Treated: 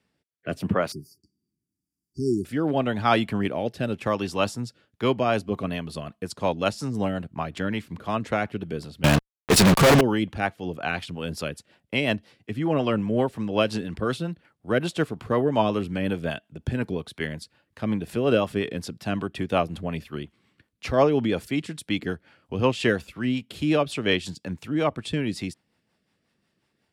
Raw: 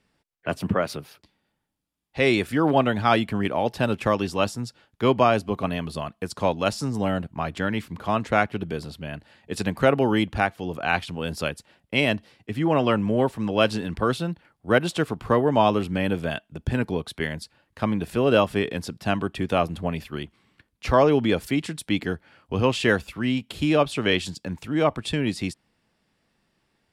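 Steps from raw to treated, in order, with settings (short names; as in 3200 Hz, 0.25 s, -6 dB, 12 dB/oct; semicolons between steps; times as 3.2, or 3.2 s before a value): HPF 72 Hz 12 dB/oct; rotary speaker horn 0.85 Hz, later 5.5 Hz, at 4.64; 0.92–2.45 brick-wall FIR band-stop 410–4500 Hz; 9.04–10.01 fuzz box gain 46 dB, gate -42 dBFS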